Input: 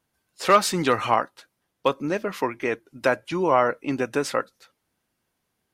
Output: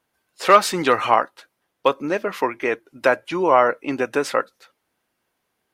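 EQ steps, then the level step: tone controls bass -9 dB, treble -6 dB; high shelf 10000 Hz +4 dB; +4.5 dB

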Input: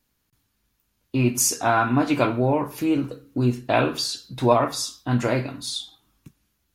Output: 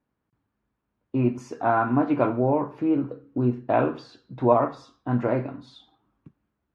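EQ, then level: HPF 140 Hz 6 dB/oct; LPF 1200 Hz 12 dB/oct; 0.0 dB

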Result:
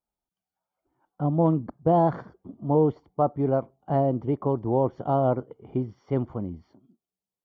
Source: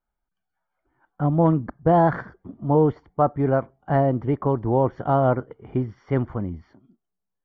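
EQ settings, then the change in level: HPF 130 Hz 6 dB/oct; bell 1700 Hz -13.5 dB 0.88 oct; -1.5 dB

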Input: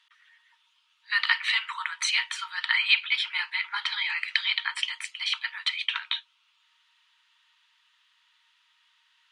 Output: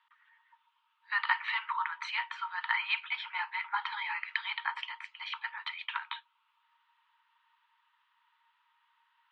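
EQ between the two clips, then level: band-pass 980 Hz, Q 1.1; air absorption 120 m; bell 840 Hz +9.5 dB 0.48 oct; 0.0 dB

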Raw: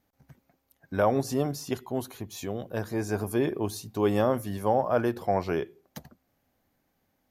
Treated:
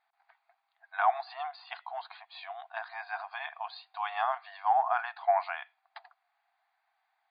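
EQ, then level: brick-wall FIR band-pass 660–4900 Hz; air absorption 200 m; notch 3000 Hz, Q 12; +4.0 dB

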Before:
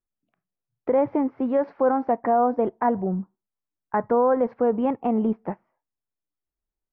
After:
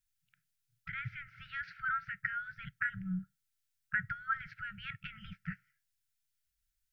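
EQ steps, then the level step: brick-wall FIR band-stop 170–1300 Hz; high shelf 2300 Hz +7 dB; +3.0 dB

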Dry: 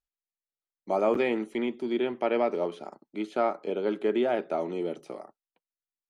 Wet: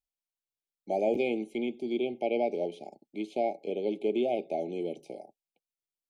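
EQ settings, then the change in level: brick-wall FIR band-stop 860–2100 Hz; -2.5 dB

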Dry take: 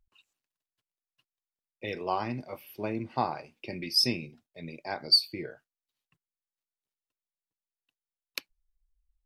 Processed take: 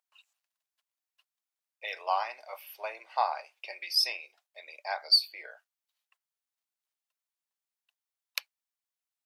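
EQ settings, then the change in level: steep high-pass 620 Hz 36 dB/oct; dynamic EQ 7100 Hz, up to -6 dB, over -40 dBFS, Q 0.87; +2.5 dB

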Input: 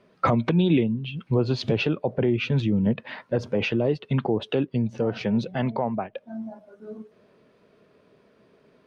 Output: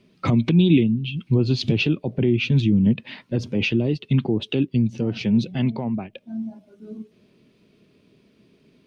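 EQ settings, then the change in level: band shelf 900 Hz -12.5 dB 2.3 oct; +5.0 dB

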